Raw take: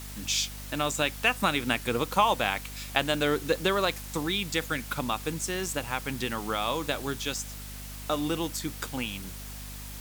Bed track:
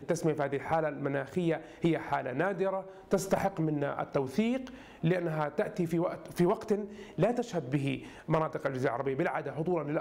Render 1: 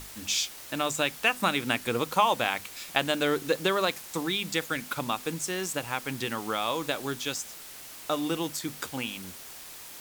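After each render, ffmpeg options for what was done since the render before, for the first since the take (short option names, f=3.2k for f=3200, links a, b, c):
-af "bandreject=f=50:t=h:w=6,bandreject=f=100:t=h:w=6,bandreject=f=150:t=h:w=6,bandreject=f=200:t=h:w=6,bandreject=f=250:t=h:w=6"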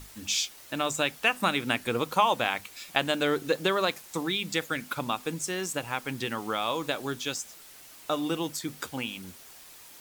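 -af "afftdn=nr=6:nf=-45"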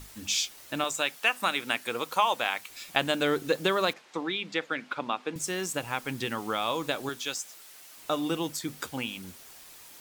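-filter_complex "[0:a]asettb=1/sr,asplit=3[a][b][c];[a]atrim=end=0.844[d];[b]atrim=start=0.84:end=2.7,asetpts=PTS-STARTPTS,afade=t=in:d=0.004:c=qsin,afade=t=out:st=1.856:d=0.004:c=qsin,highpass=f=610:p=1[e];[c]atrim=start=2.696[f];[d][e]acrossfade=d=0.004:c1=hsin:c2=qsin[g];[g][f]acrossfade=d=0.004:c1=qsin:c2=hsin,asettb=1/sr,asplit=3[h][i][j];[h]atrim=end=3.934[k];[i]atrim=start=3.93:end=5.36,asetpts=PTS-STARTPTS,afade=t=in:d=0.004:c=qsin,afade=t=out:st=1.426:d=0.004:c=qsin,highpass=260,lowpass=3.4k[l];[j]atrim=start=5.356[m];[k][l]acrossfade=d=0.004:c1=hsin:c2=qsin[n];[n][m]acrossfade=d=0.004:c1=qsin:c2=hsin,asettb=1/sr,asplit=3[o][p][q];[o]atrim=end=7.094[r];[p]atrim=start=7.09:end=7.97,asetpts=PTS-STARTPTS,afade=t=in:d=0.004:c=qsin,afade=t=out:st=0.876:d=0.004:c=qsin,lowshelf=f=290:g=-11.5[s];[q]atrim=start=7.966[t];[r][s]acrossfade=d=0.004:c1=hsin:c2=qsin[u];[u][t]acrossfade=d=0.004:c1=qsin:c2=hsin"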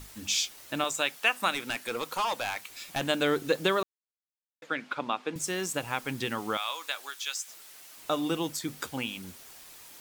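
-filter_complex "[0:a]asettb=1/sr,asplit=3[a][b][c];[a]atrim=end=1.534[d];[b]atrim=start=1.53:end=3.01,asetpts=PTS-STARTPTS,afade=t=in:d=0.004:c=qsin,afade=t=out:st=1.476:d=0.004:c=qsin,volume=25.5dB,asoftclip=hard,volume=-25.5dB[e];[c]atrim=start=3.006[f];[d][e]acrossfade=d=0.004:c1=hsin:c2=qsin[g];[g][f]acrossfade=d=0.004:c1=qsin:c2=hsin,asettb=1/sr,asplit=3[h][i][j];[h]atrim=end=6.574[k];[i]atrim=start=6.57:end=7.48,asetpts=PTS-STARTPTS,afade=t=in:d=0.004:c=qsin,afade=t=out:st=0.906:d=0.004:c=qsin,highpass=1.2k[l];[j]atrim=start=7.476[m];[k][l]acrossfade=d=0.004:c1=hsin:c2=qsin[n];[n][m]acrossfade=d=0.004:c1=qsin:c2=hsin,asplit=3[o][p][q];[o]atrim=end=3.83,asetpts=PTS-STARTPTS,afade=t=out:st=3.826:d=0.004:c=hsin[r];[p]atrim=start=3.83:end=4.62,asetpts=PTS-STARTPTS,volume=0[s];[q]atrim=start=4.62,asetpts=PTS-STARTPTS,afade=t=in:d=0.004:c=hsin[t];[r][s][t]concat=n=3:v=0:a=1"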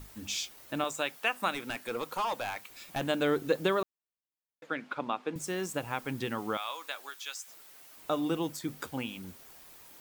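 -af "lowpass=f=1.2k:p=1,aemphasis=mode=production:type=50fm"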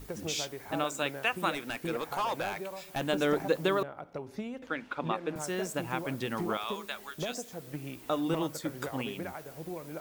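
-filter_complex "[1:a]volume=-9.5dB[a];[0:a][a]amix=inputs=2:normalize=0"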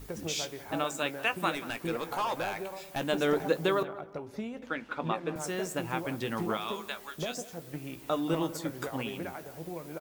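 -filter_complex "[0:a]asplit=2[a][b];[b]adelay=18,volume=-12.5dB[c];[a][c]amix=inputs=2:normalize=0,asplit=2[d][e];[e]adelay=183,lowpass=f=1.6k:p=1,volume=-15dB,asplit=2[f][g];[g]adelay=183,lowpass=f=1.6k:p=1,volume=0.32,asplit=2[h][i];[i]adelay=183,lowpass=f=1.6k:p=1,volume=0.32[j];[d][f][h][j]amix=inputs=4:normalize=0"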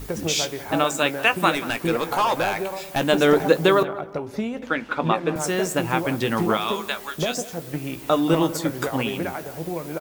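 -af "volume=10.5dB"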